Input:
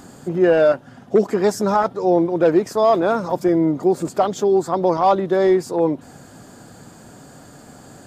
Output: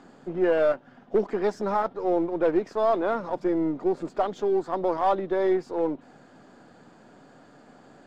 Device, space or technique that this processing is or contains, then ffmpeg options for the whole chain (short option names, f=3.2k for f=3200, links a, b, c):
crystal radio: -af "highpass=200,lowpass=3.4k,aeval=exprs='if(lt(val(0),0),0.708*val(0),val(0))':c=same,volume=-6dB"